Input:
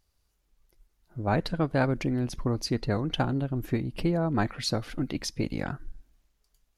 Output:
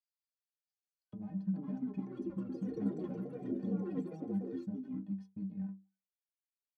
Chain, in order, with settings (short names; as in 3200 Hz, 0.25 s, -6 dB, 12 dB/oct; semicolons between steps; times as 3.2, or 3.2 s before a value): ending faded out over 1.97 s; Doppler pass-by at 2.98, 13 m/s, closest 7.2 m; low shelf 140 Hz -11 dB; comb 1.2 ms, depth 74%; de-hum 82.59 Hz, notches 9; sample leveller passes 5; compressor 6:1, threshold -32 dBFS, peak gain reduction 14.5 dB; auto-wah 200–4700 Hz, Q 7.8, down, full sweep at -38 dBFS; metallic resonator 91 Hz, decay 0.35 s, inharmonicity 0.03; echoes that change speed 0.717 s, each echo +5 st, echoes 3; gain +14.5 dB